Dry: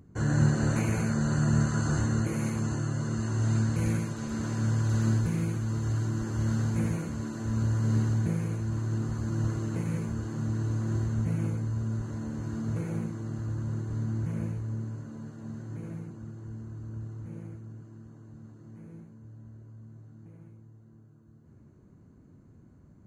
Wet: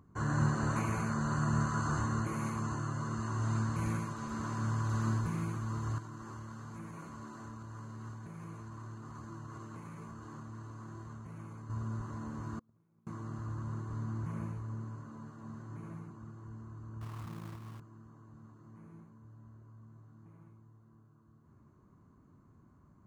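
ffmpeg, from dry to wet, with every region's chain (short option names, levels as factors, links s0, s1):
-filter_complex "[0:a]asettb=1/sr,asplit=3[s0][s1][s2];[s0]atrim=end=5.984[s3];[s1]atrim=start=5.98:end=11.7,asetpts=PTS-STARTPTS,afade=t=in:d=0.004:c=qsin,afade=t=out:st=5.716:d=0.004:c=qsin,lowshelf=f=91:g=-8.5,acompressor=threshold=0.0282:ratio=6:attack=3.2:release=140:knee=1:detection=peak,flanger=delay=5.9:depth=2.7:regen=79:speed=1.2:shape=triangular[s4];[s2]atrim=start=11.696[s5];[s3][s4]acrossfade=d=0.004:c1=hsin:c2=qsin[s6];[s6][s5]acrossfade=d=0.004:c1=qsin:c2=hsin,asettb=1/sr,asplit=3[s7][s8][s9];[s7]atrim=end=12.594[s10];[s8]atrim=start=12.59:end=13.07,asetpts=PTS-STARTPTS,afade=t=in:d=0.004:c=qsin,afade=t=out:st=0.476:d=0.004:c=qsin,agate=range=0.01:threshold=0.0562:ratio=16:release=100:detection=peak,highpass=59,equalizer=f=220:t=o:w=2.3:g=8[s11];[s9]atrim=start=13.066[s12];[s10][s11]acrossfade=d=0.004:c1=hsin:c2=qsin[s13];[s13][s12]acrossfade=d=0.004:c1=qsin:c2=hsin,asettb=1/sr,asplit=3[s14][s15][s16];[s14]atrim=end=17.014[s17];[s15]atrim=start=17.01:end=17.8,asetpts=PTS-STARTPTS,afade=t=in:d=0.004:c=qsin,afade=t=out:st=0.786:d=0.004:c=qsin,lowshelf=f=380:g=3.5,acrusher=bits=3:mode=log:mix=0:aa=0.000001[s18];[s16]atrim=start=17.796[s19];[s17][s18]acrossfade=d=0.004:c1=hsin:c2=qsin[s20];[s20][s19]acrossfade=d=0.004:c1=qsin:c2=hsin,equalizer=f=1100:t=o:w=0.6:g=14.5,bandreject=f=500:w=14,volume=0.447"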